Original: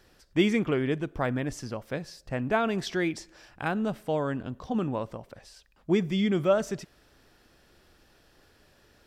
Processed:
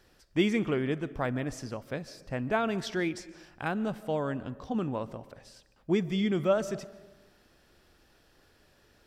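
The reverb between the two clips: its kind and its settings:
comb and all-pass reverb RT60 1.1 s, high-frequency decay 0.45×, pre-delay 105 ms, DRR 17.5 dB
level −2.5 dB

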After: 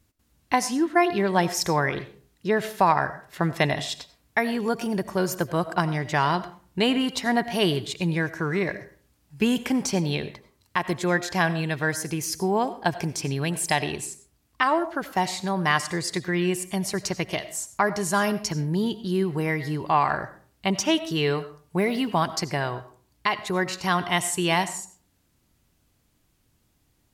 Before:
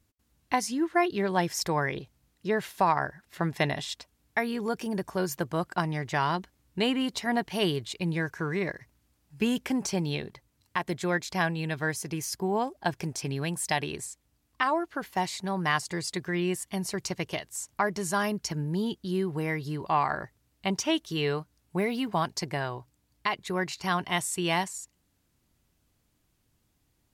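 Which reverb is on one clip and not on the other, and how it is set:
comb and all-pass reverb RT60 0.45 s, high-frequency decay 0.6×, pre-delay 50 ms, DRR 13.5 dB
level +4.5 dB

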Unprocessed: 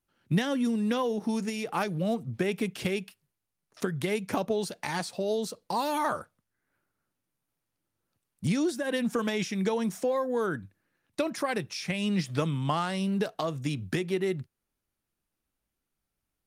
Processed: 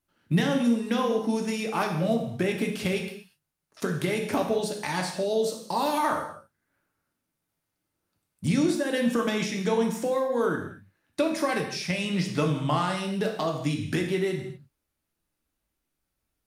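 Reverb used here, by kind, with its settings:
reverb whose tail is shaped and stops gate 270 ms falling, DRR 1.5 dB
level +1 dB

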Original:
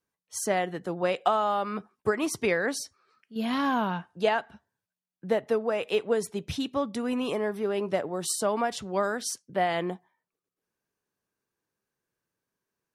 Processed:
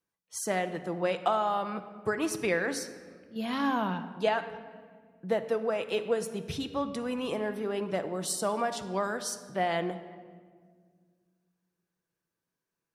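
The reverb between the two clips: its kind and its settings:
rectangular room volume 2,500 cubic metres, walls mixed, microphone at 0.73 metres
level −3 dB

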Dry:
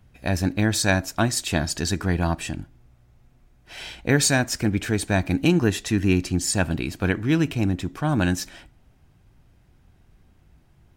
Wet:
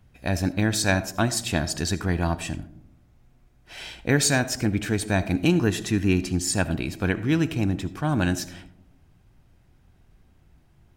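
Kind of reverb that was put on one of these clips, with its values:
comb and all-pass reverb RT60 0.73 s, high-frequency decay 0.25×, pre-delay 35 ms, DRR 15 dB
level −1.5 dB

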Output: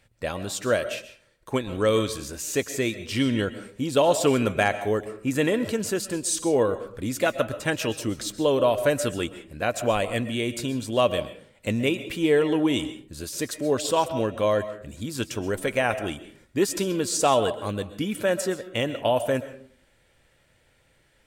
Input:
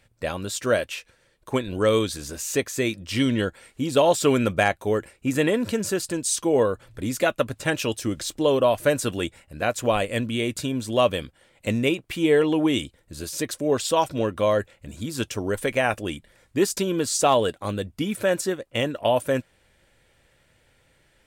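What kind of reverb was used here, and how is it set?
comb and all-pass reverb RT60 0.49 s, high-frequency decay 0.5×, pre-delay 90 ms, DRR 12 dB
level −1.5 dB

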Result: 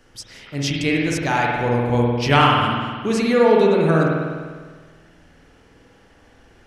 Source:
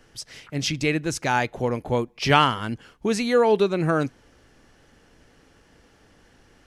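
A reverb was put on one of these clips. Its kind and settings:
spring reverb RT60 1.6 s, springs 50 ms, chirp 70 ms, DRR −2.5 dB

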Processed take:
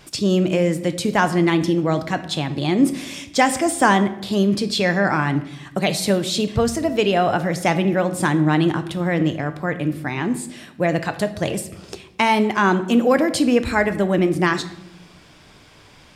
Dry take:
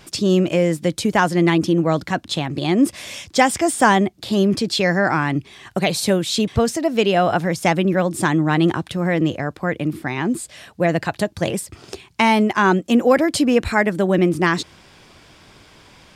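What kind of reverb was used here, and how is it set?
rectangular room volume 250 cubic metres, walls mixed, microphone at 0.38 metres
level −1.5 dB

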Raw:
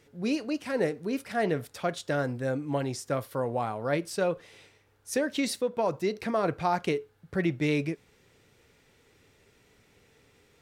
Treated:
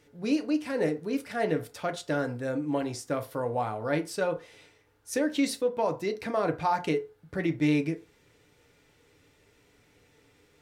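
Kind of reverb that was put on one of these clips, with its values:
feedback delay network reverb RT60 0.31 s, low-frequency decay 0.8×, high-frequency decay 0.55×, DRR 5.5 dB
level −1.5 dB

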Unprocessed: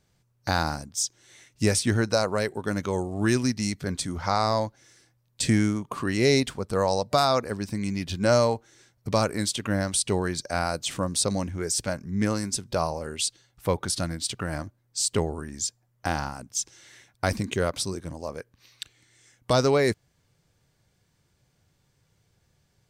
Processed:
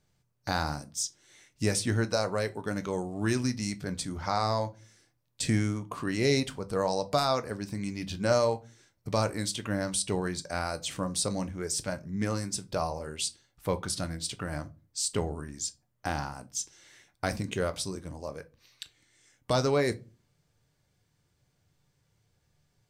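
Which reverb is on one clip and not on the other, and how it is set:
rectangular room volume 120 cubic metres, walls furnished, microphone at 0.42 metres
level −5 dB

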